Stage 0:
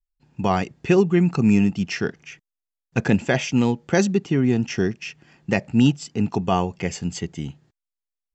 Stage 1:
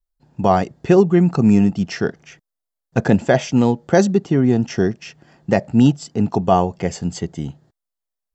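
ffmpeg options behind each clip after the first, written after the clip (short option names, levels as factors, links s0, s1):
-af "equalizer=f=630:t=o:w=0.67:g=6,equalizer=f=2500:t=o:w=0.67:g=-9,equalizer=f=6300:t=o:w=0.67:g=-3,volume=1.5"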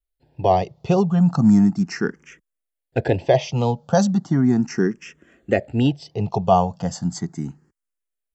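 -filter_complex "[0:a]asplit=2[s0][s1];[s1]afreqshift=0.36[s2];[s0][s2]amix=inputs=2:normalize=1"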